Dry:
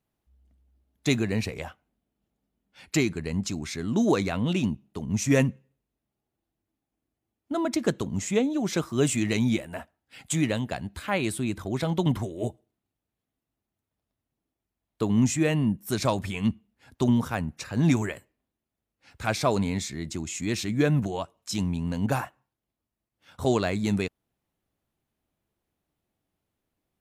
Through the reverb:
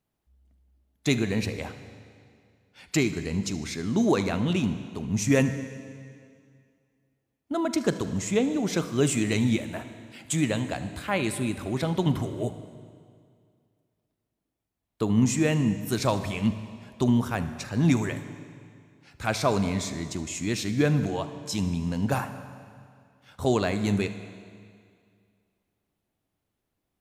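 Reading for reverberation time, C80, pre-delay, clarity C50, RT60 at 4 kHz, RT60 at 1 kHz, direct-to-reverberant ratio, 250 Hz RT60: 2.2 s, 12.0 dB, 38 ms, 10.5 dB, 2.0 s, 2.2 s, 10.0 dB, 2.2 s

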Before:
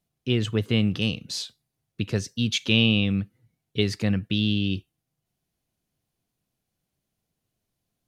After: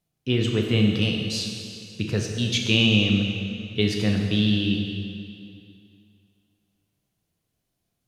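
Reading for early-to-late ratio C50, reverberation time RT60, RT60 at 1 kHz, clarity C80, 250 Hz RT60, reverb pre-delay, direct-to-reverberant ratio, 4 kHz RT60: 2.5 dB, 2.4 s, 2.4 s, 4.0 dB, 2.4 s, 6 ms, 1.0 dB, 2.3 s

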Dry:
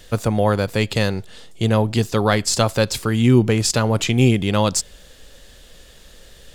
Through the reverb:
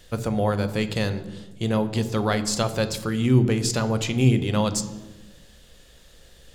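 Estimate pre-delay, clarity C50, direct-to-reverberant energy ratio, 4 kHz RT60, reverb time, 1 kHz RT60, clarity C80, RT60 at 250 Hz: 3 ms, 13.0 dB, 10.0 dB, 0.80 s, 1.2 s, 1.1 s, 14.5 dB, 1.5 s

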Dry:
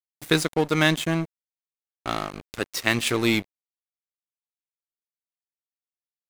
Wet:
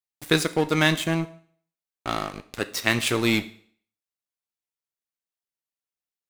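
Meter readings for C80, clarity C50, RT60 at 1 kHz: 20.5 dB, 16.5 dB, 0.55 s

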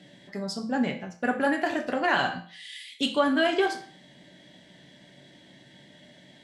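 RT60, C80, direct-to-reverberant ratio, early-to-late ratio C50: 0.45 s, 15.0 dB, 3.0 dB, 10.5 dB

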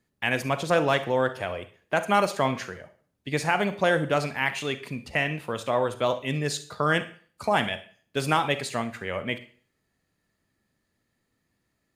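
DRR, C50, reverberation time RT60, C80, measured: 11.0 dB, 13.0 dB, 0.45 s, 19.0 dB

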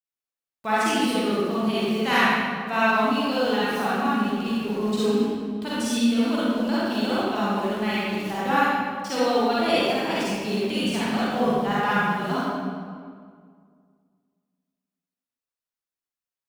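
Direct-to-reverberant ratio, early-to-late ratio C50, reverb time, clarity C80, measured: −10.0 dB, −7.0 dB, 2.0 s, −3.0 dB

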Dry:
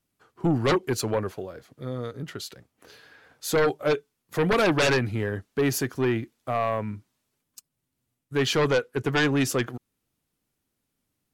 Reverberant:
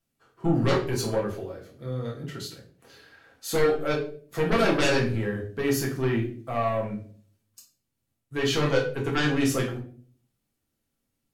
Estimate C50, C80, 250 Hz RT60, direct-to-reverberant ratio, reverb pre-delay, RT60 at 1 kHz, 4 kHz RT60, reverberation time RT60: 7.5 dB, 12.5 dB, 0.65 s, −3.0 dB, 4 ms, 0.35 s, 0.35 s, 0.45 s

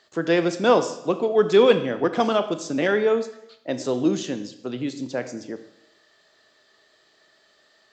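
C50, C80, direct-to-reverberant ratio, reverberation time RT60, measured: 12.0 dB, 14.0 dB, 9.5 dB, 0.80 s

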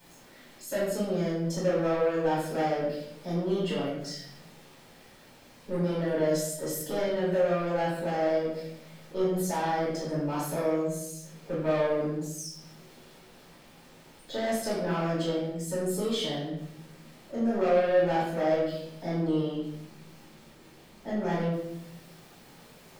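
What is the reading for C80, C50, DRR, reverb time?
5.0 dB, 1.0 dB, −10.0 dB, 0.70 s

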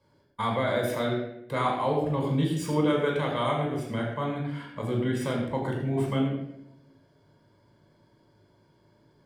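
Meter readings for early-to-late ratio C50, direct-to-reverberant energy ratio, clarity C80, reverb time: 3.5 dB, −0.5 dB, 5.0 dB, 0.80 s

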